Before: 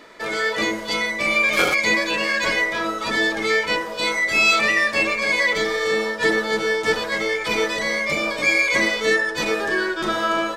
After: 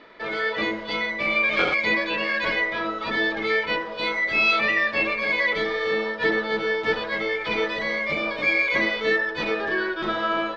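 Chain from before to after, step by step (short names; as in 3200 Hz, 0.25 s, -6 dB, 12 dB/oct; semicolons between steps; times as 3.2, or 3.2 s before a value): LPF 4000 Hz 24 dB/oct; gain -3 dB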